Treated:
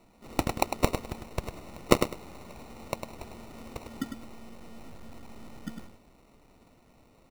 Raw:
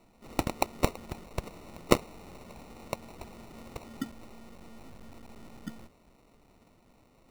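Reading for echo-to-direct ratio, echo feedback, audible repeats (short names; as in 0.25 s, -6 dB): -7.5 dB, 19%, 2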